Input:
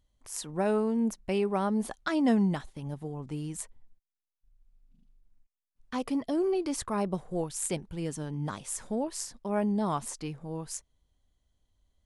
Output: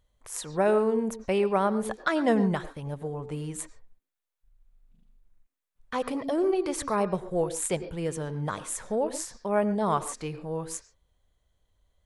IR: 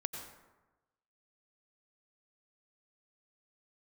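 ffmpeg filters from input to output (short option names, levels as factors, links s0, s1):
-filter_complex "[0:a]asplit=2[s0][s1];[s1]highpass=f=250:w=0.5412,highpass=f=250:w=1.3066,equalizer=f=470:t=q:w=4:g=5,equalizer=f=790:t=q:w=4:g=-7,equalizer=f=3100:t=q:w=4:g=-7,lowpass=f=5000:w=0.5412,lowpass=f=5000:w=1.3066[s2];[1:a]atrim=start_sample=2205,atrim=end_sample=6615[s3];[s2][s3]afir=irnorm=-1:irlink=0,volume=0.75[s4];[s0][s4]amix=inputs=2:normalize=0,volume=1.26"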